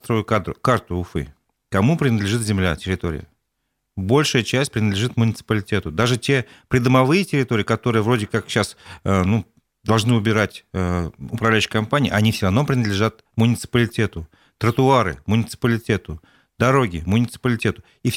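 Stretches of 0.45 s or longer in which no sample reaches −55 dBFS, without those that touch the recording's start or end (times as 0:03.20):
0:03.33–0:03.97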